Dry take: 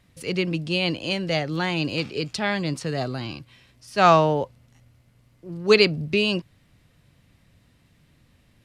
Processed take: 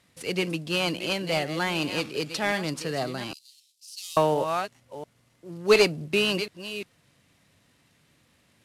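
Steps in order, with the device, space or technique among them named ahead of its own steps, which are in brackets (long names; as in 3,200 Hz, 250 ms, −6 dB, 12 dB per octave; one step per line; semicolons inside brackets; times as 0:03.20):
delay that plays each chunk backwards 360 ms, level −12 dB
early wireless headset (high-pass filter 290 Hz 6 dB per octave; variable-slope delta modulation 64 kbit/s)
0:03.33–0:04.17: inverse Chebyshev high-pass filter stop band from 1,600 Hz, stop band 50 dB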